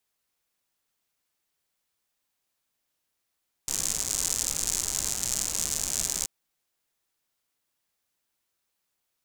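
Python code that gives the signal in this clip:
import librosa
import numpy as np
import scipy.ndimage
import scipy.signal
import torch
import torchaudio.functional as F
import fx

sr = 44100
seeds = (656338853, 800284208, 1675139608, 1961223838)

y = fx.rain(sr, seeds[0], length_s=2.58, drops_per_s=130.0, hz=7000.0, bed_db=-10.5)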